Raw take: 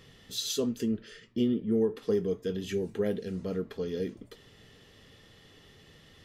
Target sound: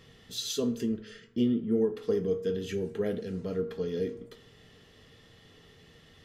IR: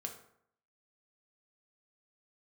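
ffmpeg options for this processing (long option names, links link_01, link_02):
-filter_complex "[0:a]asplit=2[link_01][link_02];[1:a]atrim=start_sample=2205,highshelf=frequency=9300:gain=-9[link_03];[link_02][link_03]afir=irnorm=-1:irlink=0,volume=2dB[link_04];[link_01][link_04]amix=inputs=2:normalize=0,volume=-6dB"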